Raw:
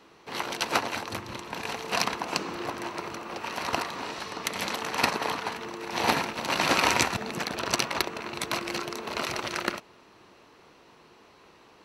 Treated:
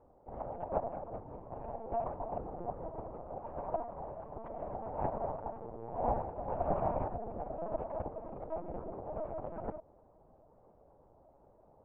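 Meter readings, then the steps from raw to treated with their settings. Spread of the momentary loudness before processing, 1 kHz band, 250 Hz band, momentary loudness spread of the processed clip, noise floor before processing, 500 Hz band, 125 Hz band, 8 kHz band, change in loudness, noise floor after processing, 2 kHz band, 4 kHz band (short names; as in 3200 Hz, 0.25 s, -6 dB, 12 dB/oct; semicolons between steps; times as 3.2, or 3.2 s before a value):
10 LU, -8.5 dB, -10.0 dB, 11 LU, -56 dBFS, -3.0 dB, -3.0 dB, under -40 dB, -10.5 dB, -64 dBFS, -32.0 dB, under -40 dB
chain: ladder low-pass 770 Hz, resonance 60%; LPC vocoder at 8 kHz pitch kept; gain +1 dB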